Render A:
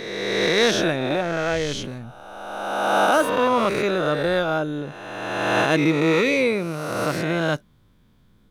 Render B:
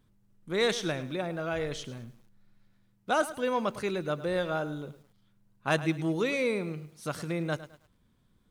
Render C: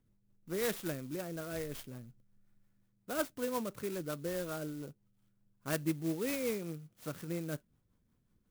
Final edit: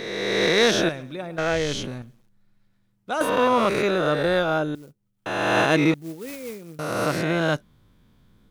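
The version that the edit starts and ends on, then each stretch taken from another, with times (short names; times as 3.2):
A
0.89–1.38 from B
2.02–3.21 from B
4.75–5.26 from C
5.94–6.79 from C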